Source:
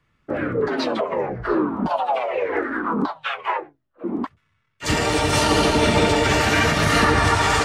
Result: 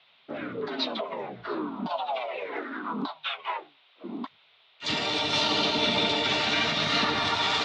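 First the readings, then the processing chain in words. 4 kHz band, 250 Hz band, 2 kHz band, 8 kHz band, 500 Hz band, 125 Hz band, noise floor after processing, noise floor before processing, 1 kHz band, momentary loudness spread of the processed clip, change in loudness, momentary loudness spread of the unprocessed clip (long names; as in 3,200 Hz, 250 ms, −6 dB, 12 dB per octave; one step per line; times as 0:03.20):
0.0 dB, −10.5 dB, −8.0 dB, −13.5 dB, −11.0 dB, −16.0 dB, −62 dBFS, −69 dBFS, −9.0 dB, 14 LU, −6.5 dB, 11 LU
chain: noise in a band 400–3,200 Hz −57 dBFS
loudspeaker in its box 240–5,200 Hz, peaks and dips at 340 Hz −8 dB, 500 Hz −10 dB, 830 Hz −4 dB, 1,200 Hz −4 dB, 1,700 Hz −8 dB, 3,700 Hz +10 dB
level −4.5 dB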